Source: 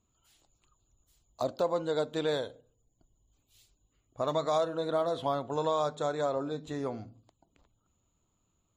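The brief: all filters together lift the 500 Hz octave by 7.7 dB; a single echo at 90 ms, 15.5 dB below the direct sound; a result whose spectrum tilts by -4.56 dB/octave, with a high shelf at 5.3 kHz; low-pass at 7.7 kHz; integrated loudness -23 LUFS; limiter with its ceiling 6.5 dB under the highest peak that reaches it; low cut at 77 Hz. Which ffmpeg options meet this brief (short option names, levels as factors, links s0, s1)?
-af "highpass=77,lowpass=7700,equalizer=f=500:t=o:g=9,highshelf=f=5300:g=7.5,alimiter=limit=0.119:level=0:latency=1,aecho=1:1:90:0.168,volume=1.88"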